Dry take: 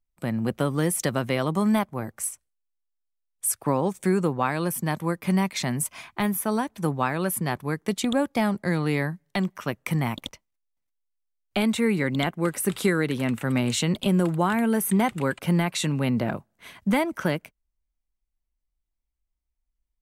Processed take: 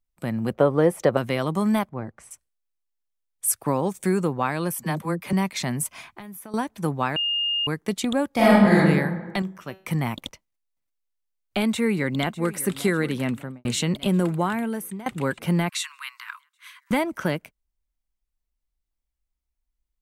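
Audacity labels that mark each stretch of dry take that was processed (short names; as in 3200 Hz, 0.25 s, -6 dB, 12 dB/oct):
0.530000	1.170000	EQ curve 250 Hz 0 dB, 510 Hz +11 dB, 8100 Hz -13 dB
1.890000	2.310000	tape spacing loss at 10 kHz 23 dB
3.480000	4.240000	high shelf 6100 Hz +4.5 dB
4.750000	5.330000	dispersion lows, late by 42 ms, half as late at 400 Hz
6.080000	6.540000	compressor 4:1, threshold -39 dBFS
7.160000	7.670000	bleep 2830 Hz -21.5 dBFS
8.300000	8.760000	reverb throw, RT60 1.4 s, DRR -9 dB
9.420000	9.870000	resonator 190 Hz, decay 0.4 s
11.690000	12.510000	echo throw 0.6 s, feedback 70%, level -17 dB
13.250000	13.650000	studio fade out
14.350000	15.060000	fade out, to -21 dB
15.690000	16.910000	steep high-pass 1000 Hz 96 dB/oct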